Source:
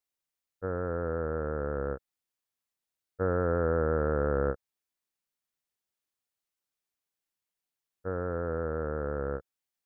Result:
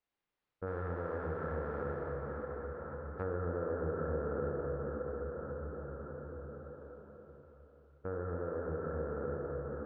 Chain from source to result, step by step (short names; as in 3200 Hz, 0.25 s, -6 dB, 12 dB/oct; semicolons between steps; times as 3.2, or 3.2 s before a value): 0.66–3.22 spectral whitening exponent 0.6; air absorption 320 m; plate-style reverb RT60 4.8 s, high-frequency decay 0.55×, DRR -3 dB; compressor 2.5:1, threshold -47 dBFS, peak gain reduction 18.5 dB; gain +4.5 dB